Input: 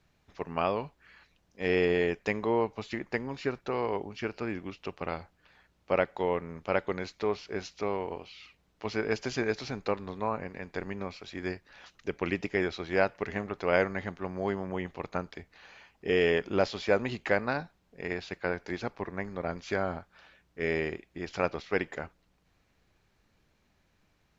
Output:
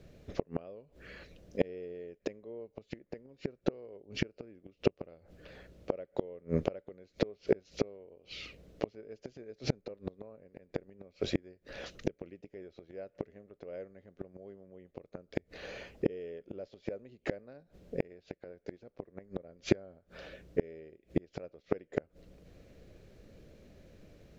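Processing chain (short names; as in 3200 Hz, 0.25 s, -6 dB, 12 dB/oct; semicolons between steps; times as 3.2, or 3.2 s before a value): resonant low shelf 700 Hz +8 dB, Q 3; flipped gate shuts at -19 dBFS, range -35 dB; gain +6 dB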